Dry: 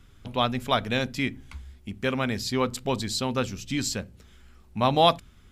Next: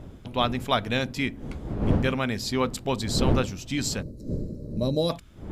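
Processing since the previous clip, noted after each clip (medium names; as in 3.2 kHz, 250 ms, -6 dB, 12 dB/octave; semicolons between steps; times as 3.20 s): wind noise 240 Hz -31 dBFS; time-frequency box 4.02–5.10 s, 630–3800 Hz -21 dB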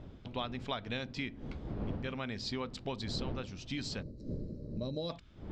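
compression 6:1, threshold -27 dBFS, peak gain reduction 11.5 dB; four-pole ladder low-pass 5.9 kHz, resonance 25%; trim -1 dB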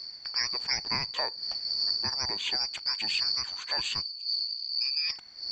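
four frequency bands reordered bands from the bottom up 2341; trim +7.5 dB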